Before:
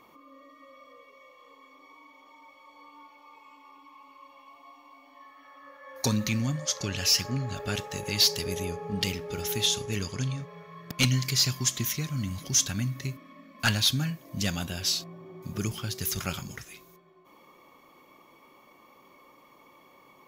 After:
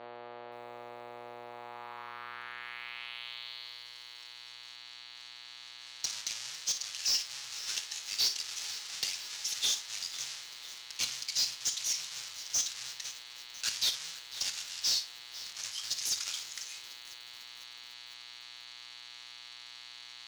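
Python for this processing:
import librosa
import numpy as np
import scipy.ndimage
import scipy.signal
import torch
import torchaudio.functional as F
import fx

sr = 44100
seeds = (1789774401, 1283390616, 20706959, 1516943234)

p1 = fx.halfwave_hold(x, sr)
p2 = fx.rider(p1, sr, range_db=10, speed_s=0.5)
p3 = fx.tone_stack(p2, sr, knobs='10-0-10')
p4 = fx.dmg_buzz(p3, sr, base_hz=120.0, harmonics=38, level_db=-45.0, tilt_db=-1, odd_only=False)
p5 = fx.filter_sweep_bandpass(p4, sr, from_hz=610.0, to_hz=5700.0, start_s=1.43, end_s=3.89, q=2.0)
p6 = np.clip(p5, -10.0 ** (-29.5 / 20.0), 10.0 ** (-29.5 / 20.0))
p7 = fx.high_shelf(p6, sr, hz=7700.0, db=-9.5)
p8 = p7 + fx.room_early_taps(p7, sr, ms=(25, 56), db=(-15.5, -12.0), dry=0)
p9 = fx.echo_crushed(p8, sr, ms=499, feedback_pct=80, bits=8, wet_db=-15.0)
y = p9 * librosa.db_to_amplitude(6.0)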